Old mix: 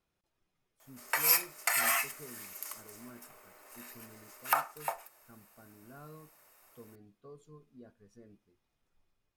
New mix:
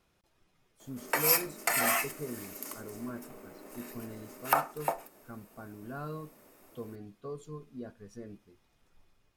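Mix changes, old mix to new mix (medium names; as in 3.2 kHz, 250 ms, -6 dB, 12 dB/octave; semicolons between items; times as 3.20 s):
speech +11.0 dB; background: remove high-pass 910 Hz 12 dB/octave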